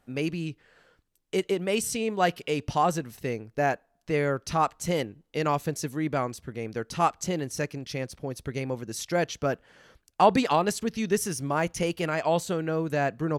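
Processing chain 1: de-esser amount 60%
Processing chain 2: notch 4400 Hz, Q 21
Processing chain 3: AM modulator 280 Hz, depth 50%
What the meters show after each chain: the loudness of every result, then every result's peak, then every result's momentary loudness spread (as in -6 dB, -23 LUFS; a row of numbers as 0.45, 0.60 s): -28.5, -28.5, -31.5 LUFS; -8.0, -8.0, -8.0 dBFS; 9, 9, 9 LU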